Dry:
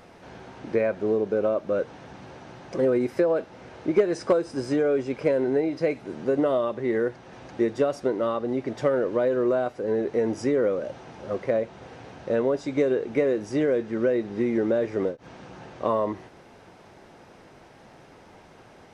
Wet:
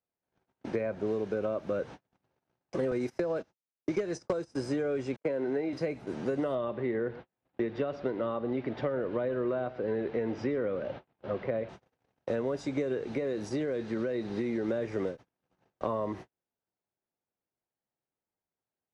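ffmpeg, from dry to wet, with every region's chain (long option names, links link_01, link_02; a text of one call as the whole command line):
ffmpeg -i in.wav -filter_complex "[0:a]asettb=1/sr,asplit=3[link_01][link_02][link_03];[link_01]atrim=end=2.914[link_04];[link_02]atrim=start=2.91:end=4.55,asetpts=PTS-STARTPTS,afade=type=in:duration=0.004:curve=qsin,afade=type=out:start_time=1.636:duration=0.004:curve=qsin,equalizer=frequency=5900:width_type=o:width=0.74:gain=8,agate=range=-20dB:threshold=-32dB:ratio=16:release=100:detection=peak[link_05];[link_03]atrim=start=4.546[link_06];[link_04][link_05]acrossfade=duration=0.004:curve1=hsin:curve2=qsin[link_07];[link_07][link_06]acrossfade=duration=0.004:curve1=qsin:curve2=hsin,asettb=1/sr,asplit=3[link_08][link_09][link_10];[link_08]atrim=end=5.164[link_11];[link_09]atrim=start=5.16:end=5.73,asetpts=PTS-STARTPTS,afade=type=in:duration=0.004:curve=qsin,afade=type=out:start_time=0.566:duration=0.004:curve=qsin,agate=range=-56dB:threshold=-32dB:ratio=16:release=100:detection=peak,highpass=200,aemphasis=mode=reproduction:type=50fm[link_12];[link_10]atrim=start=5.726[link_13];[link_11][link_12]acrossfade=duration=0.004:curve1=hsin:curve2=qsin[link_14];[link_14][link_13]acrossfade=duration=0.004:curve1=qsin:curve2=hsin,asettb=1/sr,asplit=3[link_15][link_16][link_17];[link_15]atrim=end=6.554[link_18];[link_16]atrim=start=6.55:end=11.69,asetpts=PTS-STARTPTS,afade=type=in:duration=0.004:curve=qsin,afade=type=out:start_time=5.136:duration=0.004:curve=qsin,lowpass=frequency=3900:width=0.5412,lowpass=frequency=3900:width=1.3066,aecho=1:1:118:0.119,atrim=end_sample=226674[link_19];[link_17]atrim=start=11.686[link_20];[link_18][link_19]acrossfade=duration=0.004:curve1=hsin:curve2=qsin[link_21];[link_21][link_20]acrossfade=duration=0.004:curve1=qsin:curve2=hsin,asettb=1/sr,asplit=3[link_22][link_23][link_24];[link_22]atrim=end=13.064[link_25];[link_23]atrim=start=13.06:end=14.68,asetpts=PTS-STARTPTS,afade=type=in:duration=0.004:curve=qsin,afade=type=out:start_time=1.616:duration=0.004:curve=qsin,equalizer=frequency=4100:width_type=o:width=0.32:gain=8,acompressor=threshold=-24dB:ratio=2.5:attack=3.2:release=140:knee=1:detection=peak[link_26];[link_24]atrim=start=14.676[link_27];[link_25][link_26]acrossfade=duration=0.004:curve1=hsin:curve2=qsin[link_28];[link_28][link_27]acrossfade=duration=0.004:curve1=qsin:curve2=hsin,agate=range=-45dB:threshold=-38dB:ratio=16:detection=peak,acrossover=split=180|1200[link_29][link_30][link_31];[link_29]acompressor=threshold=-40dB:ratio=4[link_32];[link_30]acompressor=threshold=-31dB:ratio=4[link_33];[link_31]acompressor=threshold=-46dB:ratio=4[link_34];[link_32][link_33][link_34]amix=inputs=3:normalize=0" out.wav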